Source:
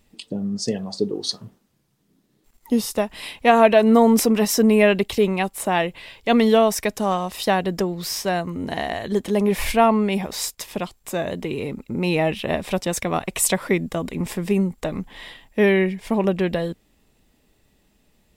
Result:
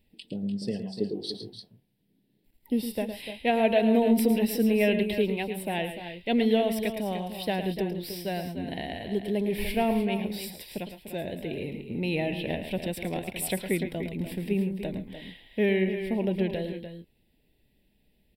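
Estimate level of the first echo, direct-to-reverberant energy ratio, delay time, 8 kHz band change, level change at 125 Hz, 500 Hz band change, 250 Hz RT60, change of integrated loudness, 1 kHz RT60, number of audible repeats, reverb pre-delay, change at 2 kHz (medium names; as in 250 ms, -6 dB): -10.0 dB, no reverb, 110 ms, -14.0 dB, -6.0 dB, -8.0 dB, no reverb, -7.5 dB, no reverb, 2, no reverb, -8.5 dB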